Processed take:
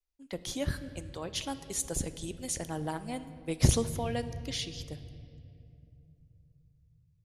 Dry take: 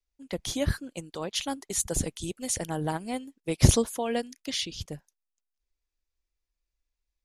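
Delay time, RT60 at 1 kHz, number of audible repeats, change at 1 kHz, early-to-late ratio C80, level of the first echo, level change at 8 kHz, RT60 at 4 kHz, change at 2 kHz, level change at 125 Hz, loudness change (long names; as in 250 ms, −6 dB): no echo audible, 2.2 s, no echo audible, −4.5 dB, 13.5 dB, no echo audible, −5.0 dB, 1.7 s, −4.5 dB, −4.0 dB, −4.5 dB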